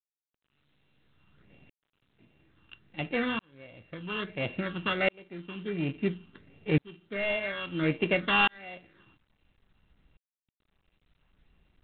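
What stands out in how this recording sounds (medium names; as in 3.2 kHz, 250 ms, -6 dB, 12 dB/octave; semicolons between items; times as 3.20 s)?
a buzz of ramps at a fixed pitch in blocks of 16 samples; phasing stages 8, 1.4 Hz, lowest notch 610–1300 Hz; tremolo saw up 0.59 Hz, depth 100%; G.726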